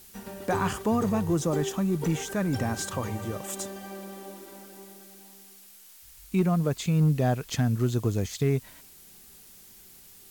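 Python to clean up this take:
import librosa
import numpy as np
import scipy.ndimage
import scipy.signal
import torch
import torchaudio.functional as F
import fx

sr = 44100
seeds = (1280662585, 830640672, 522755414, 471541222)

y = fx.fix_declip(x, sr, threshold_db=-15.5)
y = fx.noise_reduce(y, sr, print_start_s=5.53, print_end_s=6.03, reduce_db=21.0)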